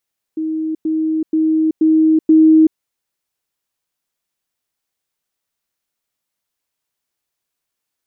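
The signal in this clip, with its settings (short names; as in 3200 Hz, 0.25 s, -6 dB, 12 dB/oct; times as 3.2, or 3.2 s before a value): level ladder 316 Hz -17.5 dBFS, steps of 3 dB, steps 5, 0.38 s 0.10 s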